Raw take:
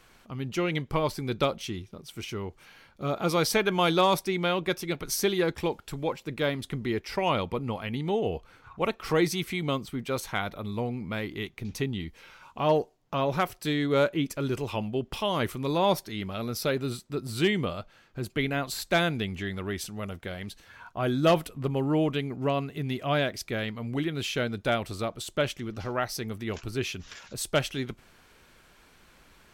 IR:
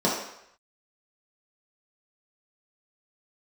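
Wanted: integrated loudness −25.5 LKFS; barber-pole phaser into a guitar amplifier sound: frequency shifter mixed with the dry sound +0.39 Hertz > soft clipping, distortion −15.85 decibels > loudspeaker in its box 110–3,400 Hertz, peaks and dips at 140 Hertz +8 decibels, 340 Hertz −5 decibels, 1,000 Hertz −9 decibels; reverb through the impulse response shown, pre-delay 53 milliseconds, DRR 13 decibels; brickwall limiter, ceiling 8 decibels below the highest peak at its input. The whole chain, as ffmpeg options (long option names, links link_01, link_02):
-filter_complex "[0:a]alimiter=limit=-21dB:level=0:latency=1,asplit=2[link_01][link_02];[1:a]atrim=start_sample=2205,adelay=53[link_03];[link_02][link_03]afir=irnorm=-1:irlink=0,volume=-28dB[link_04];[link_01][link_04]amix=inputs=2:normalize=0,asplit=2[link_05][link_06];[link_06]afreqshift=0.39[link_07];[link_05][link_07]amix=inputs=2:normalize=1,asoftclip=threshold=-27.5dB,highpass=110,equalizer=frequency=140:width_type=q:width=4:gain=8,equalizer=frequency=340:width_type=q:width=4:gain=-5,equalizer=frequency=1000:width_type=q:width=4:gain=-9,lowpass=frequency=3400:width=0.5412,lowpass=frequency=3400:width=1.3066,volume=11.5dB"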